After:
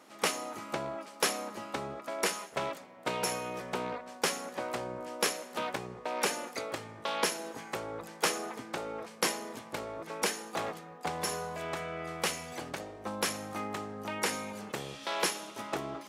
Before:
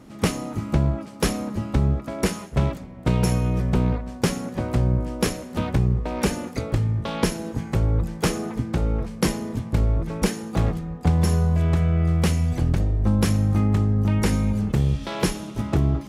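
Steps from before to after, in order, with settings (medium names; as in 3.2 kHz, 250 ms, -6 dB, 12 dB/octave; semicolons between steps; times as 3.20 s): high-pass 600 Hz 12 dB/octave; trim -1.5 dB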